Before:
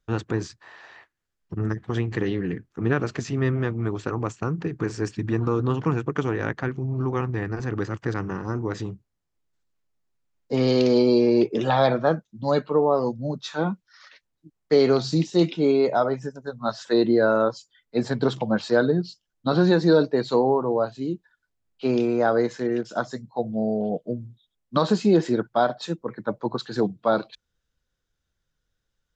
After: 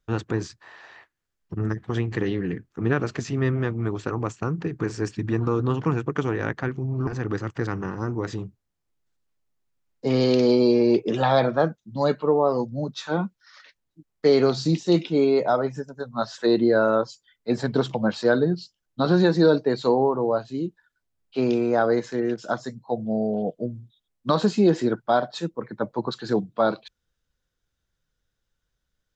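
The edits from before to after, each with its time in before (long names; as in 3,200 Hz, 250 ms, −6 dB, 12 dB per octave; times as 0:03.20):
0:07.07–0:07.54: remove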